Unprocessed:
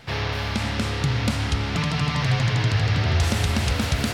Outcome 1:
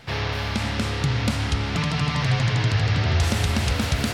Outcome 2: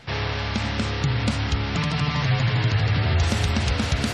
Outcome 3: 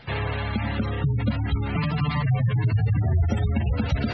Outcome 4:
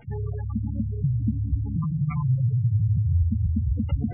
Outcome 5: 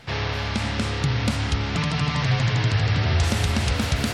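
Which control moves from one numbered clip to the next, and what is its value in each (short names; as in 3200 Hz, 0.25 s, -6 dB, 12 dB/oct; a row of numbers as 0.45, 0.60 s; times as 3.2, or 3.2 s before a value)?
spectral gate, under each frame's peak: -60, -35, -20, -10, -45 dB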